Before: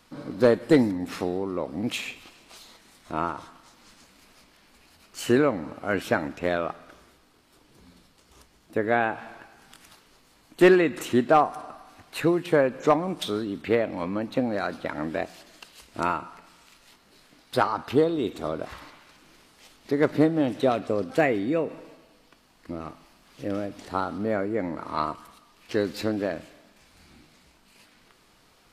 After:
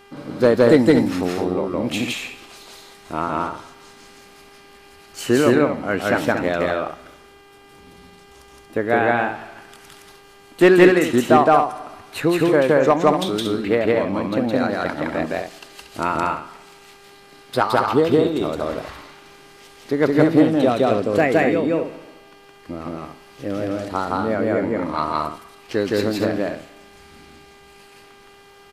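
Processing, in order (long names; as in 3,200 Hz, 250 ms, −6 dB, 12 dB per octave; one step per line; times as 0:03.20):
loudspeakers that aren't time-aligned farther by 57 metres 0 dB, 80 metres −7 dB
hum with harmonics 400 Hz, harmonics 8, −53 dBFS −4 dB per octave
level +3.5 dB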